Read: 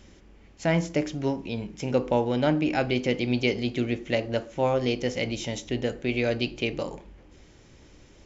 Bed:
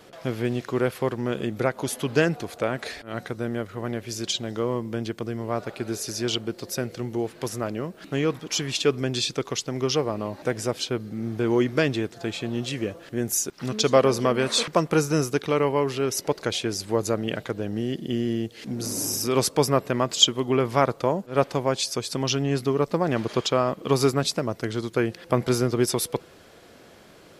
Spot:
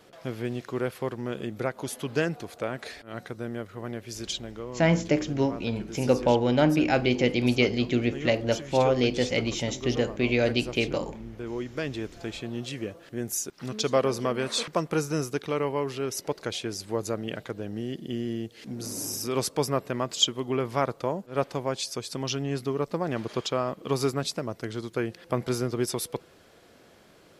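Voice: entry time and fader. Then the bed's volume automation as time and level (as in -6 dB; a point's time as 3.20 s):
4.15 s, +2.0 dB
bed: 4.38 s -5.5 dB
4.65 s -12 dB
11.67 s -12 dB
12.08 s -5.5 dB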